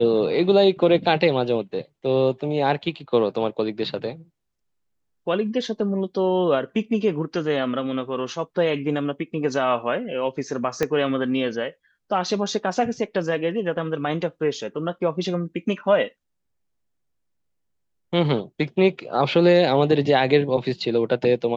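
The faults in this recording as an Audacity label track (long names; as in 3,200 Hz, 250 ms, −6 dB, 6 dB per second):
10.830000	10.830000	click −9 dBFS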